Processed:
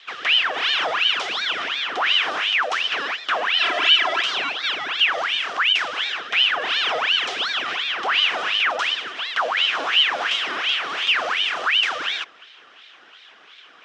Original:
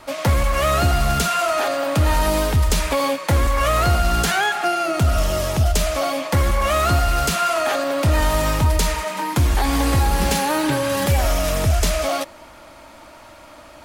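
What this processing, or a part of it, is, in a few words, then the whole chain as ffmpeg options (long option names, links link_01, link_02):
voice changer toy: -filter_complex "[0:a]aeval=exprs='val(0)*sin(2*PI*1800*n/s+1800*0.7/2.8*sin(2*PI*2.8*n/s))':channel_layout=same,highpass=530,equalizer=frequency=560:width_type=q:width=4:gain=-6,equalizer=frequency=900:width_type=q:width=4:gain=-7,equalizer=frequency=2100:width_type=q:width=4:gain=-4,equalizer=frequency=3100:width_type=q:width=4:gain=5,equalizer=frequency=4400:width_type=q:width=4:gain=-6,lowpass=frequency=5000:width=0.5412,lowpass=frequency=5000:width=1.3066,asettb=1/sr,asplit=3[link_01][link_02][link_03];[link_01]atrim=end=3.594[link_04];[link_02]atrim=start=3.59:end=4.22,asetpts=PTS-STARTPTS,afade=type=in:duration=0.004:curve=qsin,afade=type=out:start_time=0.626:duration=0.004:curve=qsin,aecho=1:1:3:0.75,atrim=end_sample=27783[link_05];[link_03]atrim=start=4.216[link_06];[link_04][link_05]acrossfade=duration=0.004:curve1=hsin:curve2=qsin[link_07];[link_07][link_06]acrossfade=duration=0.004:curve1=qsin:curve2=hsin"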